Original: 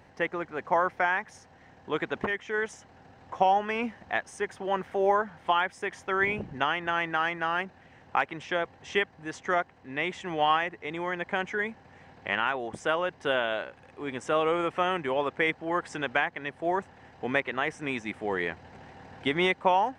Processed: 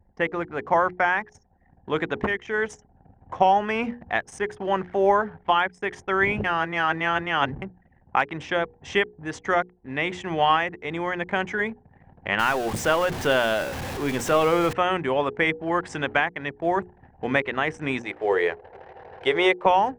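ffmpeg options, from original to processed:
-filter_complex "[0:a]asettb=1/sr,asplit=3[s0][s1][s2];[s0]atrim=end=12.394[s3];[s1]atrim=start=12.39:end=14.73,asetpts=PTS-STARTPTS,afade=t=in:d=0.004:c=qsin,afade=t=out:st=2.336:d=0.004:c=qsin,aeval=exprs='val(0)+0.5*0.0237*sgn(val(0))':c=same[s4];[s2]atrim=start=14.726[s5];[s3][s4]acrossfade=d=0.004:c1=hsin:c2=qsin[s6];[s6][s5]acrossfade=d=0.004:c1=qsin:c2=hsin,asettb=1/sr,asplit=3[s7][s8][s9];[s7]atrim=end=17.994[s10];[s8]atrim=start=17.99:end=19.66,asetpts=PTS-STARTPTS,afade=t=in:d=0.004:c=qsin,afade=t=out:st=1.666:d=0.004:c=qsin,lowshelf=f=320:t=q:w=3:g=-9.5[s11];[s9]atrim=start=19.656[s12];[s10][s11]acrossfade=d=0.004:c1=hsin:c2=qsin[s13];[s13][s12]acrossfade=d=0.004:c1=qsin:c2=hsin,asplit=3[s14][s15][s16];[s14]atrim=end=6.442[s17];[s15]atrim=start=6.438:end=7.622,asetpts=PTS-STARTPTS,areverse[s18];[s16]atrim=start=7.618[s19];[s17][s18]acrossfade=d=0.004:c1=hsin:c2=hsin[s20];[s20][s19]acrossfade=d=0.004:c1=hsin:c2=hsin,anlmdn=0.0158,lowshelf=f=170:g=8,bandreject=f=60:t=h:w=6,bandreject=f=120:t=h:w=6,bandreject=f=180:t=h:w=6,bandreject=f=240:t=h:w=6,bandreject=f=300:t=h:w=6,bandreject=f=360:t=h:w=6,bandreject=f=420:t=h:w=6,bandreject=f=480:t=h:w=6,volume=1.58"

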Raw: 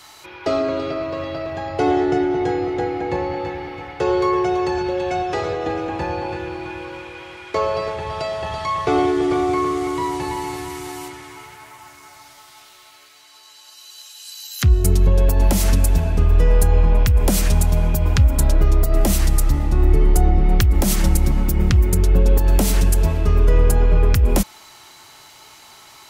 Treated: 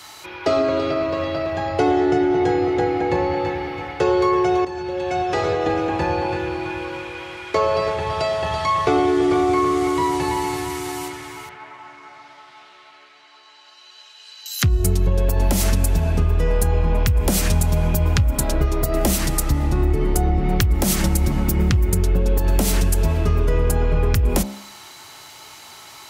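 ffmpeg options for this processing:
-filter_complex "[0:a]asettb=1/sr,asplit=3[s0][s1][s2];[s0]atrim=end=11.494[s3];[s1]atrim=start=11.49:end=14.46,asetpts=PTS-STARTPTS,afade=t=in:d=0.004:c=qsin,afade=t=out:st=2.966:d=0.004:c=qsin,highpass=170,lowpass=2700[s4];[s2]atrim=start=14.456[s5];[s3][s4]acrossfade=d=0.004:c1=hsin:c2=qsin[s6];[s6][s5]acrossfade=d=0.004:c1=qsin:c2=hsin,asplit=2[s7][s8];[s7]atrim=end=4.65,asetpts=PTS-STARTPTS,afade=t=out:st=4.646:d=0.004:c=hsin:silence=0.199526[s9];[s8]atrim=start=4.65,asetpts=PTS-STARTPTS,afade=t=in:d=0.86:silence=0.199526[s10];[s9][s10]concat=n=2:v=0:a=1,highpass=f=46:w=0.5412,highpass=f=46:w=1.3066,bandreject=f=67.42:t=h:w=4,bandreject=f=134.84:t=h:w=4,bandreject=f=202.26:t=h:w=4,bandreject=f=269.68:t=h:w=4,bandreject=f=337.1:t=h:w=4,bandreject=f=404.52:t=h:w=4,bandreject=f=471.94:t=h:w=4,bandreject=f=539.36:t=h:w=4,bandreject=f=606.78:t=h:w=4,bandreject=f=674.2:t=h:w=4,bandreject=f=741.62:t=h:w=4,bandreject=f=809.04:t=h:w=4,bandreject=f=876.46:t=h:w=4,bandreject=f=943.88:t=h:w=4,bandreject=f=1011.3:t=h:w=4,bandreject=f=1078.72:t=h:w=4,bandreject=f=1146.14:t=h:w=4,acompressor=threshold=0.141:ratio=6,volume=1.5"

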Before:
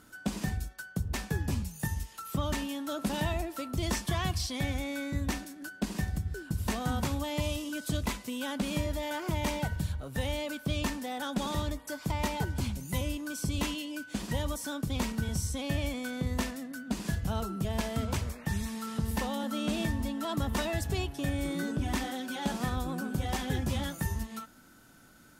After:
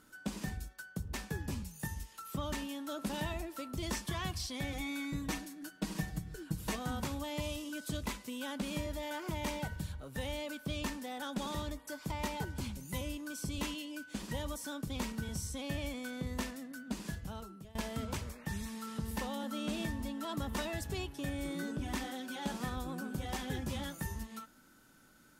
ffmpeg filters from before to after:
-filter_complex "[0:a]asettb=1/sr,asplit=3[s0][s1][s2];[s0]atrim=end=4.724[s3];[s1]atrim=start=4.72:end=6.76,asetpts=PTS-STARTPTS,afade=t=in:d=0.004:c=qsin,afade=t=out:st=2.036:d=0.004:c=qsin,aecho=1:1:6.3:0.87,atrim=end_sample=89964[s4];[s2]atrim=start=6.756[s5];[s3][s4]acrossfade=d=0.004:c1=hsin:c2=qsin[s6];[s6][s5]acrossfade=d=0.004:c1=qsin:c2=hsin,asplit=2[s7][s8];[s7]atrim=end=17.75,asetpts=PTS-STARTPTS,afade=t=out:st=16.94:d=0.81:silence=0.11885[s9];[s8]atrim=start=17.75,asetpts=PTS-STARTPTS,afade=t=in:d=0.004:c=hsin:silence=0.11885[s10];[s9][s10]concat=n=2:v=0:a=1,equalizer=f=90:t=o:w=1.3:g=-4.5,bandreject=f=700:w=12,volume=0.562"

